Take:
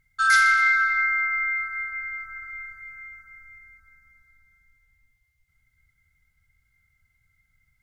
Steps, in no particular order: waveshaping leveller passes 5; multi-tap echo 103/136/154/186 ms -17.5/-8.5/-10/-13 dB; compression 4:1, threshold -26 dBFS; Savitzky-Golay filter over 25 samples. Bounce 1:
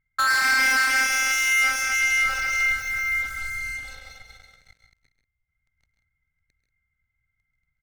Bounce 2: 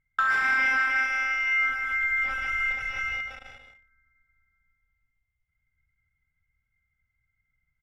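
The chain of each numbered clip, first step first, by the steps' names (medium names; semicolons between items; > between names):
Savitzky-Golay filter > compression > waveshaping leveller > multi-tap echo; waveshaping leveller > Savitzky-Golay filter > compression > multi-tap echo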